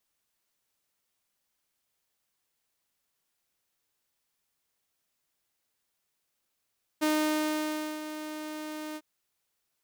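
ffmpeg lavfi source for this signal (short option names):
-f lavfi -i "aevalsrc='0.0891*(2*mod(307*t,1)-1)':d=2:s=44100,afade=t=in:d=0.021,afade=t=out:st=0.021:d=0.961:silence=0.237,afade=t=out:st=1.95:d=0.05"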